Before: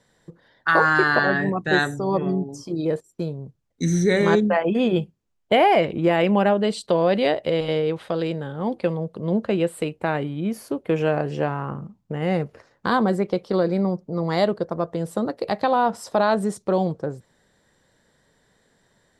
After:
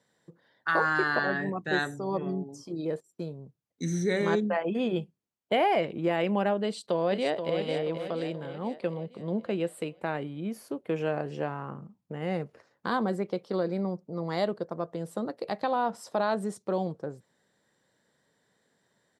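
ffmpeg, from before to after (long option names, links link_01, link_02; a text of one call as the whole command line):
ffmpeg -i in.wav -filter_complex "[0:a]asplit=2[link_01][link_02];[link_02]afade=type=in:start_time=6.63:duration=0.01,afade=type=out:start_time=7.59:duration=0.01,aecho=0:1:480|960|1440|1920|2400|2880:0.421697|0.210848|0.105424|0.0527121|0.026356|0.013178[link_03];[link_01][link_03]amix=inputs=2:normalize=0,highpass=130,volume=-8dB" out.wav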